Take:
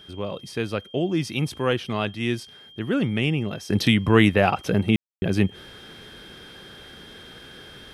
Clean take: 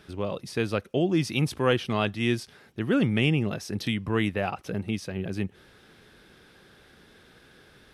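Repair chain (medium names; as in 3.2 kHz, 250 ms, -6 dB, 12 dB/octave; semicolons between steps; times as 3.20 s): band-stop 3.2 kHz, Q 30; room tone fill 4.96–5.22 s; trim 0 dB, from 3.70 s -9.5 dB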